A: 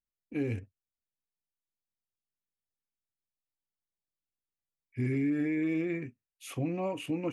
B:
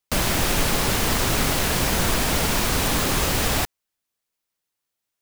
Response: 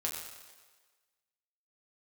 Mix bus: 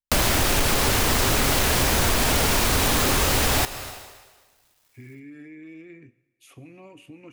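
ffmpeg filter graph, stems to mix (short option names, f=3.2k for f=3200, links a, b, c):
-filter_complex "[0:a]acrossover=split=420|1200[a][b][c];[a]acompressor=threshold=-39dB:ratio=4[d];[b]acompressor=threshold=-58dB:ratio=4[e];[c]acompressor=threshold=-48dB:ratio=4[f];[d][e][f]amix=inputs=3:normalize=0,volume=-5dB,asplit=2[g][h];[h]volume=-14.5dB[i];[1:a]aeval=exprs='0.376*sin(PI/2*1.41*val(0)/0.376)':c=same,dynaudnorm=f=100:g=3:m=14dB,acrusher=bits=8:mix=0:aa=0.000001,volume=-3dB,asplit=2[j][k];[k]volume=-12.5dB[l];[2:a]atrim=start_sample=2205[m];[i][l]amix=inputs=2:normalize=0[n];[n][m]afir=irnorm=-1:irlink=0[o];[g][j][o]amix=inputs=3:normalize=0,equalizer=f=180:w=3.2:g=-5.5,acompressor=threshold=-19dB:ratio=5"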